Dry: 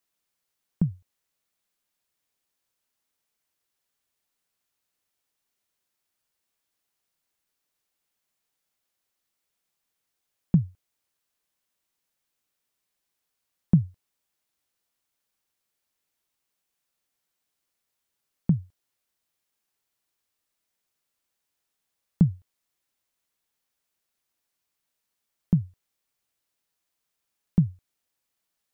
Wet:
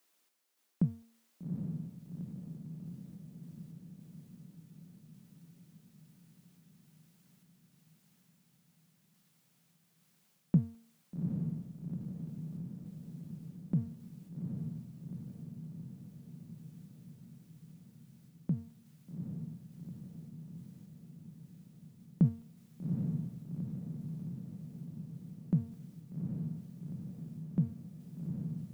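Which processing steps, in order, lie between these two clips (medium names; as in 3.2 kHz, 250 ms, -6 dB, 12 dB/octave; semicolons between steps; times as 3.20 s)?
resonant low shelf 170 Hz -11 dB, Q 1.5; de-hum 229.3 Hz, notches 33; reverse; compression 10:1, threshold -30 dBFS, peak gain reduction 14 dB; reverse; random-step tremolo; echo that smears into a reverb 802 ms, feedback 66%, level -3.5 dB; trim +8 dB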